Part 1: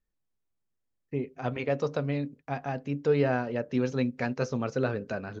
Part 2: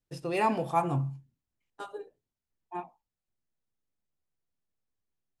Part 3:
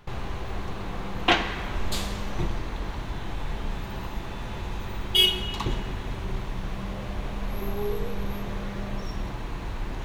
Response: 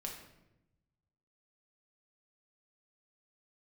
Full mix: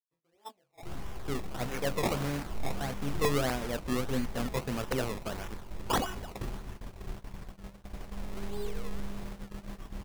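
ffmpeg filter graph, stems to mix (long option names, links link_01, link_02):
-filter_complex "[0:a]acrusher=bits=5:mix=0:aa=0.000001,adelay=150,volume=-4.5dB[link_01];[1:a]equalizer=frequency=590:width=0.3:gain=6.5,flanger=delay=17:depth=4.2:speed=0.76,volume=-18.5dB[link_02];[2:a]adelay=750,volume=-12dB,asplit=2[link_03][link_04];[link_04]volume=-6dB[link_05];[3:a]atrim=start_sample=2205[link_06];[link_05][link_06]afir=irnorm=-1:irlink=0[link_07];[link_01][link_02][link_03][link_07]amix=inputs=4:normalize=0,agate=range=-25dB:threshold=-38dB:ratio=16:detection=peak,acrusher=samples=20:mix=1:aa=0.000001:lfo=1:lforange=20:lforate=1.6,aeval=exprs='(mod(8.91*val(0)+1,2)-1)/8.91':channel_layout=same"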